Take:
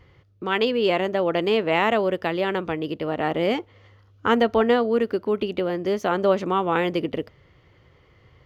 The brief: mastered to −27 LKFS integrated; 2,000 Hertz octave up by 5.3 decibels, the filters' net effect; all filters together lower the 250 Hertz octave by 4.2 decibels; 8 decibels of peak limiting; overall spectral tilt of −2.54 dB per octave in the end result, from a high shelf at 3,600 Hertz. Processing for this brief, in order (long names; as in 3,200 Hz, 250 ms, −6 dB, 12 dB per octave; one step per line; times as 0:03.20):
parametric band 250 Hz −6 dB
parametric band 2,000 Hz +8 dB
high-shelf EQ 3,600 Hz −6 dB
level −2 dB
brickwall limiter −15 dBFS